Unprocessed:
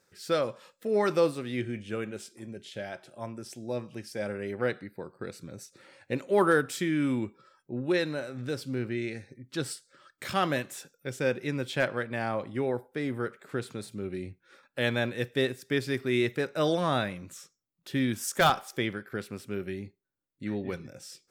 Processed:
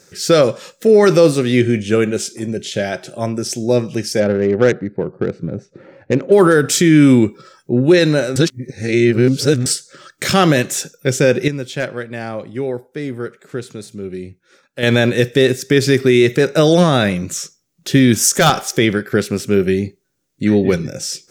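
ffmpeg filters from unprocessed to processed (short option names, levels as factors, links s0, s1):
-filter_complex "[0:a]asettb=1/sr,asplit=3[s0][s1][s2];[s0]atrim=end=4.204[s3];[s1]atrim=start=4.2:end=6.32,asetpts=PTS-STARTPTS,afade=t=in:d=0.004:c=qsin,afade=t=out:st=2.116:d=0.004:c=qsin,adynamicsmooth=sensitivity=2.5:basefreq=1100[s4];[s2]atrim=start=6.316[s5];[s3][s4]acrossfade=d=0.004:c1=hsin:c2=qsin[s6];[s6][s5]acrossfade=d=0.004:c1=qsin:c2=hsin,asplit=5[s7][s8][s9][s10][s11];[s7]atrim=end=8.362[s12];[s8]atrim=start=8.358:end=9.662,asetpts=PTS-STARTPTS,areverse[s13];[s9]atrim=start=9.658:end=11.482[s14];[s10]atrim=start=11.478:end=14.832,asetpts=PTS-STARTPTS,volume=0.251[s15];[s11]atrim=start=14.828[s16];[s12][s13]acrossfade=d=0.004:c1=hsin:c2=hsin[s17];[s17][s14]acrossfade=d=0.004:c1=hsin:c2=hsin[s18];[s18][s15]acrossfade=d=0.004:c1=hsin:c2=hsin[s19];[s19][s16]acrossfade=d=0.004:c1=hsin:c2=hsin,equalizer=f=160:t=o:w=0.67:g=5,equalizer=f=400:t=o:w=0.67:g=4,equalizer=f=1000:t=o:w=0.67:g=-5,equalizer=f=6300:t=o:w=0.67:g=8,alimiter=level_in=7.94:limit=0.891:release=50:level=0:latency=1,volume=0.891"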